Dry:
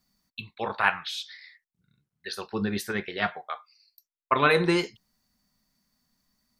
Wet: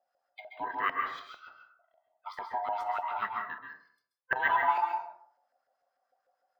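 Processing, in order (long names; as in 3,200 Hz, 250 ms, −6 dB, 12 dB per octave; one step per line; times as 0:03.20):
neighbouring bands swapped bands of 500 Hz
auto-filter band-pass saw up 6.7 Hz 650–1,600 Hz
dense smooth reverb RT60 0.55 s, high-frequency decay 0.5×, pre-delay 120 ms, DRR 2.5 dB
in parallel at +2 dB: downward compressor, threshold −34 dBFS, peak gain reduction 15.5 dB
on the sum: linearly interpolated sample-rate reduction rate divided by 2×
level −5.5 dB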